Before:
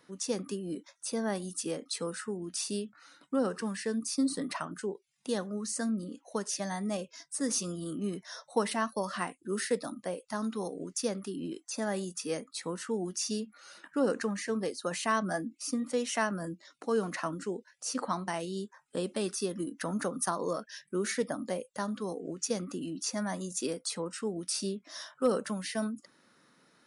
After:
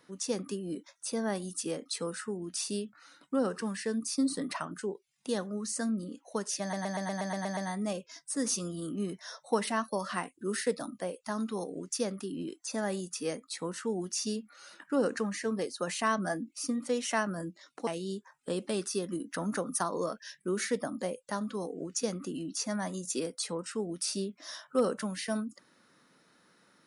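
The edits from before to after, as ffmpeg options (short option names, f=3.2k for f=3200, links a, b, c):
-filter_complex "[0:a]asplit=10[a][b][c][d][e][f][g][h][i][j];[a]atrim=end=6.732[k];[b]atrim=start=6.608:end=6.732[l];[c]atrim=start=6.608:end=6.732[m];[d]atrim=start=6.608:end=6.732[n];[e]atrim=start=6.608:end=6.732[o];[f]atrim=start=6.608:end=6.732[p];[g]atrim=start=6.608:end=6.732[q];[h]atrim=start=6.608:end=6.732[r];[i]atrim=start=6.608:end=16.912[s];[j]atrim=start=18.338[t];[k][l]acrossfade=d=0.004:c1=hsin:c2=hsin[u];[u][m]acrossfade=d=0.004:c1=hsin:c2=hsin[v];[v][n]acrossfade=d=0.004:c1=hsin:c2=hsin[w];[w][o]acrossfade=d=0.004:c1=hsin:c2=hsin[x];[x][p]acrossfade=d=0.004:c1=hsin:c2=hsin[y];[y][q]acrossfade=d=0.004:c1=hsin:c2=hsin[z];[z][r]acrossfade=d=0.004:c1=hsin:c2=hsin[aa];[aa][s]acrossfade=d=0.004:c1=hsin:c2=hsin[ab];[ab][t]acrossfade=d=0.004:c1=hsin:c2=hsin"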